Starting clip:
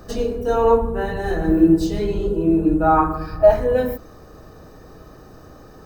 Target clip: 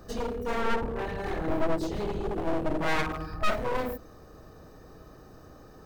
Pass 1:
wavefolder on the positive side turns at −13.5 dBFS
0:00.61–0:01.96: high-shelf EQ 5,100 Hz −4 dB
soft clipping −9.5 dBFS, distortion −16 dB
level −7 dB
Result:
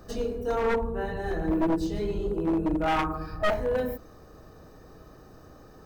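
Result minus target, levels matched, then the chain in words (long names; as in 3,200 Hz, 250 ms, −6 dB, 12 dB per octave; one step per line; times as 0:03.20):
wavefolder on the positive side: distortion −12 dB
wavefolder on the positive side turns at −23 dBFS
0:00.61–0:01.96: high-shelf EQ 5,100 Hz −4 dB
soft clipping −9.5 dBFS, distortion −15 dB
level −7 dB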